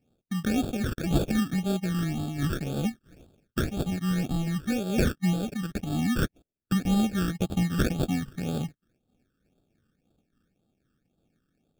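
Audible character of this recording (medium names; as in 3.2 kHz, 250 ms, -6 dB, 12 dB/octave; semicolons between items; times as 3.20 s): aliases and images of a low sample rate 1 kHz, jitter 0%; phasing stages 12, 1.9 Hz, lowest notch 700–2000 Hz; random flutter of the level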